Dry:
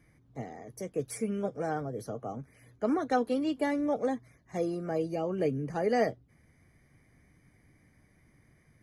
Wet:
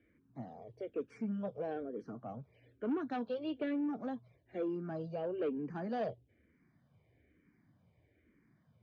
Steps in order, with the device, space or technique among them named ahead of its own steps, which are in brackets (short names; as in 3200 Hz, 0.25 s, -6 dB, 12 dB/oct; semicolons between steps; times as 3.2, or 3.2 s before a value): barber-pole phaser into a guitar amplifier (endless phaser -1.1 Hz; soft clip -28 dBFS, distortion -13 dB; speaker cabinet 91–3500 Hz, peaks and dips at 140 Hz -4 dB, 800 Hz -5 dB, 1200 Hz -5 dB, 2000 Hz -9 dB); gain -1 dB